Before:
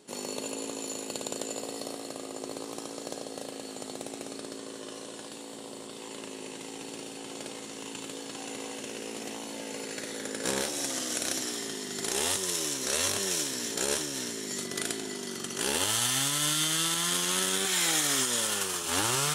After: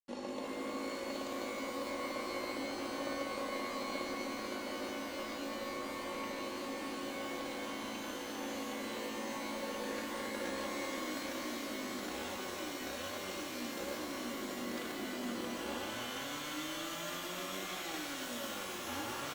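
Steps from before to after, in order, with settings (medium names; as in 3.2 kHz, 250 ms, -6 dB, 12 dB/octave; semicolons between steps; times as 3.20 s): comb 3.6 ms, depth 71%; compression 4:1, threshold -34 dBFS, peak gain reduction 11 dB; bit crusher 7-bit; tape spacing loss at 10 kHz 25 dB; pitch-shifted reverb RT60 3.4 s, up +12 st, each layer -2 dB, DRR 2 dB; trim -2.5 dB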